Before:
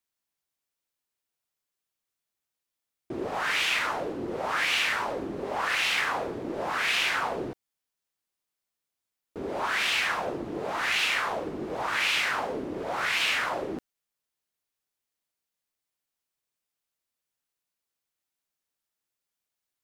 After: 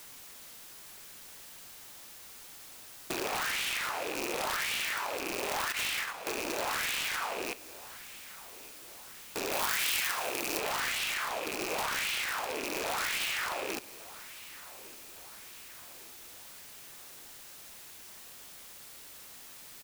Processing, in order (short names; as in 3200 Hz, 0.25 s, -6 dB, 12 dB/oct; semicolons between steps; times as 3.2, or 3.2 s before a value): rattling part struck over -46 dBFS, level -31 dBFS; HPF 600 Hz 6 dB/oct; tilt +2 dB/oct; added noise white -61 dBFS; in parallel at +0.5 dB: limiter -19 dBFS, peak gain reduction 8 dB; 5.72–6.27 on the sum: gate -20 dBFS, range -14 dB; compressor 12:1, threshold -33 dBFS, peak gain reduction 17 dB; wrapped overs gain 27.5 dB; companded quantiser 4-bit; 9.52–10.59 high shelf 5700 Hz +7.5 dB; on a send: feedback echo 1.16 s, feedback 51%, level -19 dB; on the sum: gain +2.5 dB